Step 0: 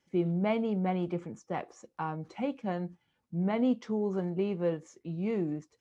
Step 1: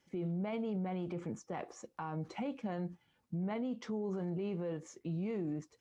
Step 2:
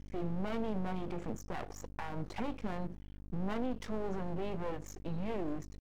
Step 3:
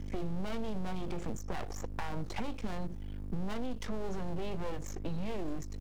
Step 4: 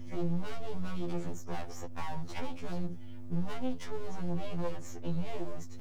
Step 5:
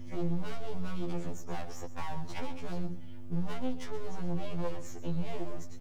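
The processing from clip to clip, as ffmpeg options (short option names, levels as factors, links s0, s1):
-af "acompressor=threshold=0.0224:ratio=2,alimiter=level_in=2.82:limit=0.0631:level=0:latency=1:release=24,volume=0.355,volume=1.26"
-af "aeval=exprs='val(0)+0.00316*(sin(2*PI*50*n/s)+sin(2*PI*2*50*n/s)/2+sin(2*PI*3*50*n/s)/3+sin(2*PI*4*50*n/s)/4+sin(2*PI*5*50*n/s)/5)':c=same,aeval=exprs='max(val(0),0)':c=same,volume=1.88"
-filter_complex "[0:a]acrossover=split=100|3600[s0][s1][s2];[s0]acompressor=threshold=0.00708:ratio=4[s3];[s1]acompressor=threshold=0.00398:ratio=4[s4];[s2]acompressor=threshold=0.00112:ratio=4[s5];[s3][s4][s5]amix=inputs=3:normalize=0,volume=2.99"
-af "afftfilt=real='re*2*eq(mod(b,4),0)':imag='im*2*eq(mod(b,4),0)':win_size=2048:overlap=0.75,volume=1.19"
-af "aecho=1:1:126:0.2"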